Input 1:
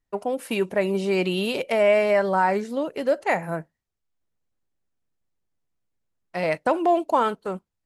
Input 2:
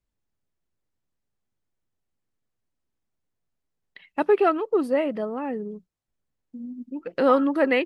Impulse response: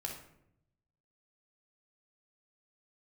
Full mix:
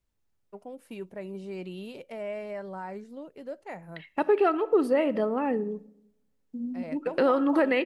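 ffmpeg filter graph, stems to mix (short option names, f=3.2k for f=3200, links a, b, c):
-filter_complex "[0:a]lowshelf=f=420:g=9,adelay=400,volume=-20dB[a];[1:a]volume=1dB,asplit=2[b][c];[c]volume=-12.5dB[d];[2:a]atrim=start_sample=2205[e];[d][e]afir=irnorm=-1:irlink=0[f];[a][b][f]amix=inputs=3:normalize=0,alimiter=limit=-14.5dB:level=0:latency=1:release=225"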